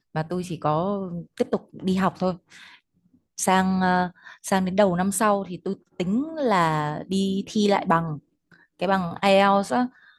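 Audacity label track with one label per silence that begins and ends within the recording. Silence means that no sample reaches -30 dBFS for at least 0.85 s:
2.340000	3.390000	silence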